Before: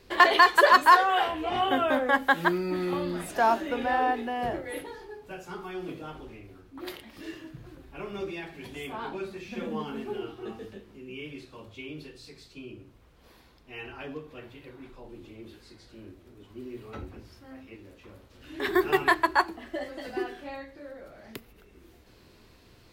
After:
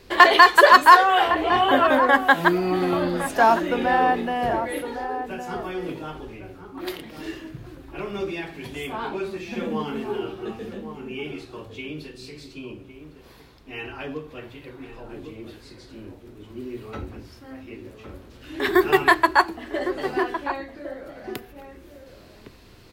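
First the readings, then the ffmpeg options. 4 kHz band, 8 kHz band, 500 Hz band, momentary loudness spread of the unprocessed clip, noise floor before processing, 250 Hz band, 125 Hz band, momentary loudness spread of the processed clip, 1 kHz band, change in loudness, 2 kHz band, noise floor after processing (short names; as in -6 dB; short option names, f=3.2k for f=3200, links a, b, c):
+6.0 dB, +6.0 dB, +6.5 dB, 23 LU, -57 dBFS, +6.5 dB, +6.5 dB, 23 LU, +6.5 dB, +6.0 dB, +6.0 dB, -48 dBFS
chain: -filter_complex "[0:a]asplit=2[a][b];[b]adelay=1108,volume=-9dB,highshelf=f=4k:g=-24.9[c];[a][c]amix=inputs=2:normalize=0,volume=6dB"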